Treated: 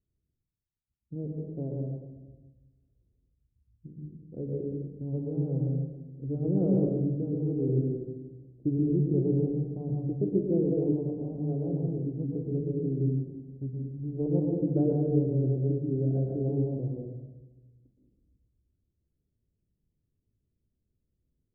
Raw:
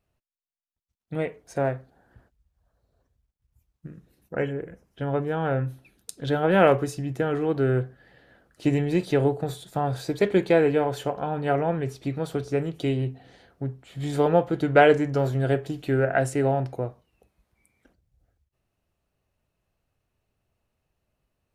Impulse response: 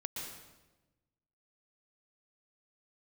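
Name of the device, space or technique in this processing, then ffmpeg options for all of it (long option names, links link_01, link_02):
next room: -filter_complex "[0:a]lowpass=frequency=380:width=0.5412,lowpass=frequency=380:width=1.3066[link_01];[1:a]atrim=start_sample=2205[link_02];[link_01][link_02]afir=irnorm=-1:irlink=0,volume=-2dB"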